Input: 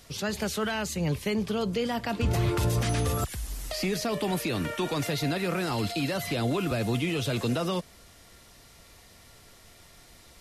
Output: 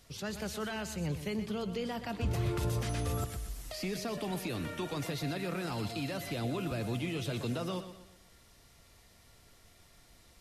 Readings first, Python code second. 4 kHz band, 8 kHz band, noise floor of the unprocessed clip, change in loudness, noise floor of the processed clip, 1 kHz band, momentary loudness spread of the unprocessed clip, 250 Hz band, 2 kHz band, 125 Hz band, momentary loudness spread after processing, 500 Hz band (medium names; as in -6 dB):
-8.0 dB, -8.0 dB, -54 dBFS, -7.0 dB, -61 dBFS, -8.0 dB, 4 LU, -7.0 dB, -8.0 dB, -6.5 dB, 5 LU, -7.5 dB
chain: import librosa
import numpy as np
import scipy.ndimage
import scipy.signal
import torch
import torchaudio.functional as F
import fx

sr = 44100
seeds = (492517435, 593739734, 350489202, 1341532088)

p1 = fx.low_shelf(x, sr, hz=150.0, db=3.5)
p2 = p1 + fx.echo_feedback(p1, sr, ms=123, feedback_pct=41, wet_db=-11.0, dry=0)
y = p2 * 10.0 ** (-8.5 / 20.0)